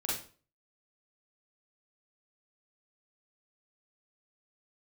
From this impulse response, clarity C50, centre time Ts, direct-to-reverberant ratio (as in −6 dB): 1.5 dB, 49 ms, −6.5 dB